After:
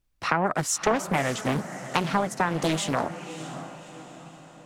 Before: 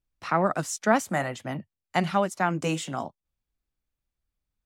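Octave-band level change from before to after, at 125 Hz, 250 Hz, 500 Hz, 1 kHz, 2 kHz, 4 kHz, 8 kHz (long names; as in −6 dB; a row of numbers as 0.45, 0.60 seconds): +1.5, +1.0, 0.0, +0.5, +1.5, +5.5, +5.0 decibels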